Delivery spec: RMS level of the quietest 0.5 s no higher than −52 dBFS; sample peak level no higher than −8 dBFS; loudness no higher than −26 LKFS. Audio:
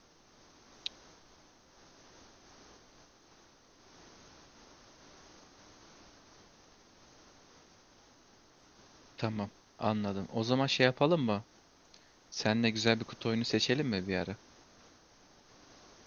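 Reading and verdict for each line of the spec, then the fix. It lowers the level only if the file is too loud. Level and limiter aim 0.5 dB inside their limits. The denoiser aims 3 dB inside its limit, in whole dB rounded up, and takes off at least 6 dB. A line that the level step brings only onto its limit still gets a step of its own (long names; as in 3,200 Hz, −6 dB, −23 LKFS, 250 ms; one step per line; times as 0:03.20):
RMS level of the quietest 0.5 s −62 dBFS: in spec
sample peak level −10.0 dBFS: in spec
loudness −32.5 LKFS: in spec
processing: no processing needed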